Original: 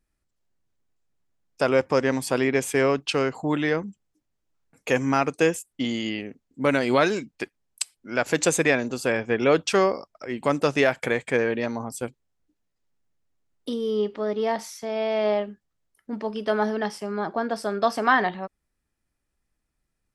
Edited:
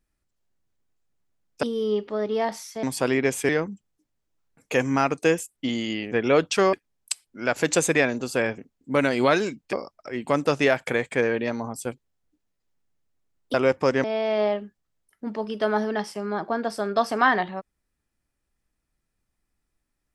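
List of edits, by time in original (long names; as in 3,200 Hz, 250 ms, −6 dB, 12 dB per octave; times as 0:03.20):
0:01.63–0:02.13: swap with 0:13.70–0:14.90
0:02.79–0:03.65: remove
0:06.28–0:07.43: swap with 0:09.28–0:09.89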